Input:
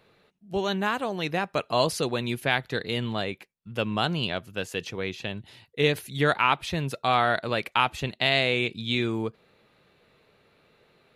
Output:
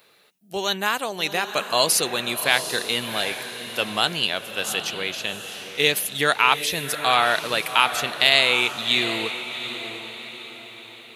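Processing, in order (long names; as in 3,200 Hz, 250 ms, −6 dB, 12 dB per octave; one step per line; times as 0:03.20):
RIAA equalisation recording
feedback delay with all-pass diffusion 750 ms, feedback 44%, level −9.5 dB
level +3 dB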